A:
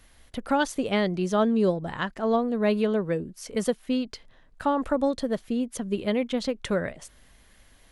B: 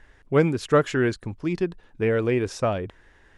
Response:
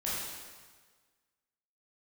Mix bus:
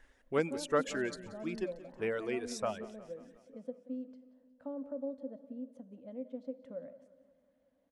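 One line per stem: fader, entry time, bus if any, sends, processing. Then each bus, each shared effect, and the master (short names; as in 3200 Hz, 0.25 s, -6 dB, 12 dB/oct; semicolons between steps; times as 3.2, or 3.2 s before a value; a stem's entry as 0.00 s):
-5.0 dB, 0.00 s, send -19 dB, echo send -16.5 dB, compressor 1.5:1, threshold -44 dBFS, peak gain reduction 9.5 dB; double band-pass 380 Hz, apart 0.99 oct
-10.0 dB, 0.00 s, no send, echo send -18 dB, reverb removal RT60 1.7 s; bell 120 Hz -11.5 dB 1.2 oct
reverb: on, RT60 1.5 s, pre-delay 13 ms
echo: feedback echo 0.18 s, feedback 57%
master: high shelf 5600 Hz +9.5 dB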